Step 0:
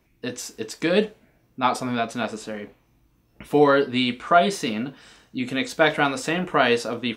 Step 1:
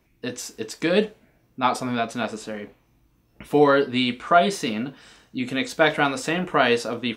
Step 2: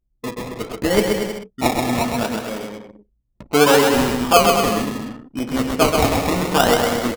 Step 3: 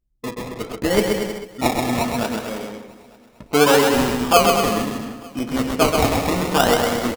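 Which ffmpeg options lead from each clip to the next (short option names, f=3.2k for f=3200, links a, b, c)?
-af anull
-af "acrusher=samples=23:mix=1:aa=0.000001:lfo=1:lforange=13.8:lforate=0.69,aecho=1:1:130|234|317.2|383.8|437:0.631|0.398|0.251|0.158|0.1,anlmdn=0.398,volume=2.5dB"
-af "aecho=1:1:449|898|1347:0.0891|0.0401|0.018,volume=-1dB"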